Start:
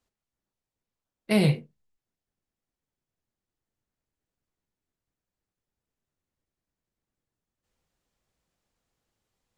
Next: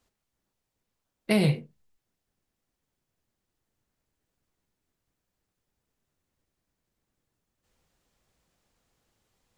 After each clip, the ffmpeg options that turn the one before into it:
ffmpeg -i in.wav -af "acompressor=threshold=-32dB:ratio=2,volume=6.5dB" out.wav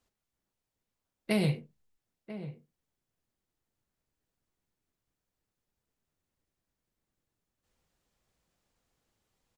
ffmpeg -i in.wav -filter_complex "[0:a]asplit=2[link_01][link_02];[link_02]adelay=991.3,volume=-13dB,highshelf=frequency=4000:gain=-22.3[link_03];[link_01][link_03]amix=inputs=2:normalize=0,volume=-5dB" out.wav

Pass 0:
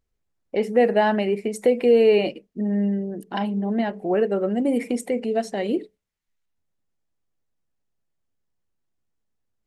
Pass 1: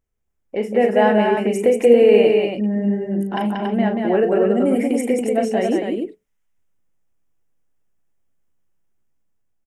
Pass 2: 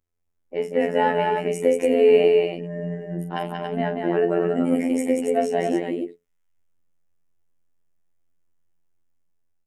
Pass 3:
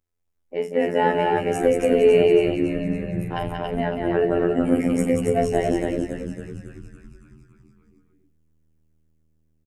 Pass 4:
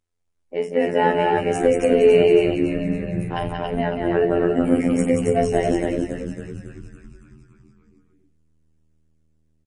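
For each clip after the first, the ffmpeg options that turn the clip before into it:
ffmpeg -i in.wav -af "equalizer=frequency=4200:width=3.5:gain=-13,dynaudnorm=framelen=240:gausssize=7:maxgain=4dB,aecho=1:1:37.9|183.7|279.9:0.398|0.631|0.562,volume=-1dB" out.wav
ffmpeg -i in.wav -af "afftfilt=real='hypot(re,im)*cos(PI*b)':imag='0':win_size=2048:overlap=0.75" out.wav
ffmpeg -i in.wav -filter_complex "[0:a]asplit=9[link_01][link_02][link_03][link_04][link_05][link_06][link_07][link_08][link_09];[link_02]adelay=278,afreqshift=-79,volume=-8dB[link_10];[link_03]adelay=556,afreqshift=-158,volume=-12.3dB[link_11];[link_04]adelay=834,afreqshift=-237,volume=-16.6dB[link_12];[link_05]adelay=1112,afreqshift=-316,volume=-20.9dB[link_13];[link_06]adelay=1390,afreqshift=-395,volume=-25.2dB[link_14];[link_07]adelay=1668,afreqshift=-474,volume=-29.5dB[link_15];[link_08]adelay=1946,afreqshift=-553,volume=-33.8dB[link_16];[link_09]adelay=2224,afreqshift=-632,volume=-38.1dB[link_17];[link_01][link_10][link_11][link_12][link_13][link_14][link_15][link_16][link_17]amix=inputs=9:normalize=0" out.wav
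ffmpeg -i in.wav -af "volume=2dB" -ar 32000 -c:a libmp3lame -b:a 40k out.mp3

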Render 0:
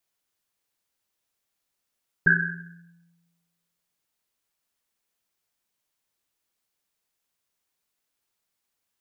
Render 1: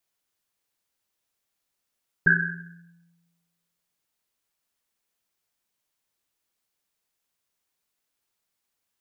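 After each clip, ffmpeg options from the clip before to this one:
ffmpeg -i in.wav -af anull out.wav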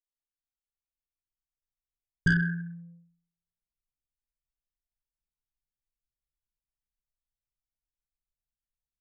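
ffmpeg -i in.wav -af "aeval=exprs='0.447*(cos(1*acos(clip(val(0)/0.447,-1,1)))-cos(1*PI/2))+0.0562*(cos(5*acos(clip(val(0)/0.447,-1,1)))-cos(5*PI/2))':channel_layout=same,asubboost=boost=8.5:cutoff=200,anlmdn=1.58,volume=-8dB" out.wav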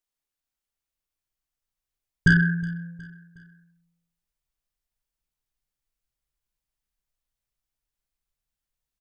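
ffmpeg -i in.wav -af "aecho=1:1:365|730|1095:0.0841|0.0379|0.017,volume=6.5dB" out.wav

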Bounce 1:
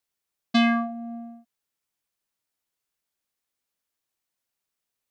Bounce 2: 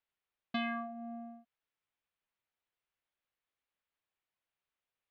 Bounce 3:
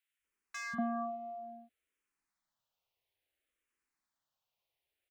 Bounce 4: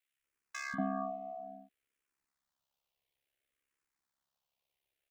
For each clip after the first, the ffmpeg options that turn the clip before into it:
ffmpeg -i in.wav -af "lowpass=frequency=3400:width=0.5412,lowpass=frequency=3400:width=1.3066,equalizer=frequency=240:width=0.94:gain=-5.5,acompressor=threshold=-38dB:ratio=2,volume=-2.5dB" out.wav
ffmpeg -i in.wav -filter_complex "[0:a]volume=30.5dB,asoftclip=hard,volume=-30.5dB,acrossover=split=160|1300[link_01][link_02][link_03];[link_01]adelay=190[link_04];[link_02]adelay=240[link_05];[link_04][link_05][link_03]amix=inputs=3:normalize=0,asplit=2[link_06][link_07];[link_07]afreqshift=-0.59[link_08];[link_06][link_08]amix=inputs=2:normalize=1,volume=6.5dB" out.wav
ffmpeg -i in.wav -af "aeval=exprs='val(0)*sin(2*PI*34*n/s)':channel_layout=same,volume=3dB" out.wav

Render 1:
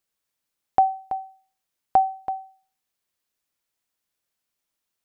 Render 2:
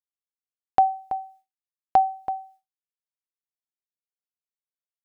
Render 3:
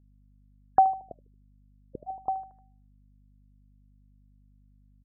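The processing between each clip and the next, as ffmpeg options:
ffmpeg -i in.wav -af "agate=range=-33dB:threshold=-48dB:ratio=3:detection=peak" out.wav
ffmpeg -i in.wav -af "aecho=1:1:76|152|228|304:0.168|0.0806|0.0387|0.0186,aeval=exprs='val(0)+0.00141*(sin(2*PI*50*n/s)+sin(2*PI*2*50*n/s)/2+sin(2*PI*3*50*n/s)/3+sin(2*PI*4*50*n/s)/4+sin(2*PI*5*50*n/s)/5)':channel_layout=same,afftfilt=real='re*lt(b*sr/1024,340*pow(2100/340,0.5+0.5*sin(2*PI*0.47*pts/sr)))':imag='im*lt(b*sr/1024,340*pow(2100/340,0.5+0.5*sin(2*PI*0.47*pts/sr)))':win_size=1024:overlap=0.75,volume=-1.5dB" out.wav

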